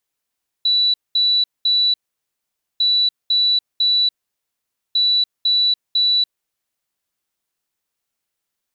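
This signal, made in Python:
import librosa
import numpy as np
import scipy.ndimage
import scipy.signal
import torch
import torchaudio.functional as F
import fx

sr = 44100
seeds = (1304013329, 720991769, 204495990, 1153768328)

y = fx.beep_pattern(sr, wave='sine', hz=3950.0, on_s=0.29, off_s=0.21, beeps=3, pause_s=0.86, groups=3, level_db=-13.0)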